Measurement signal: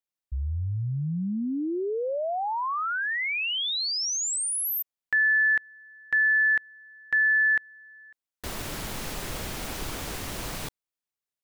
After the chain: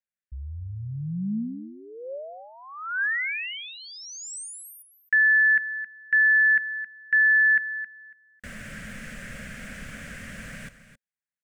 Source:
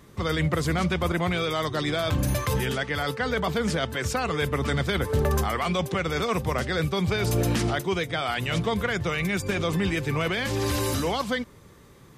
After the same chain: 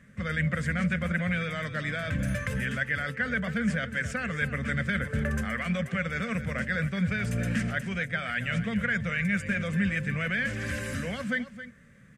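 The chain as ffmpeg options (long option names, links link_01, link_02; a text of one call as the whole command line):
ffmpeg -i in.wav -filter_complex "[0:a]firequalizer=gain_entry='entry(100,0);entry(220,9);entry(340,-15);entry(550,2);entry(870,-16);entry(1600,11);entry(3900,-9);entry(8200,-1);entry(13000,-14)':delay=0.05:min_phase=1,asplit=2[link_01][link_02];[link_02]aecho=0:1:268:0.224[link_03];[link_01][link_03]amix=inputs=2:normalize=0,volume=-6.5dB" out.wav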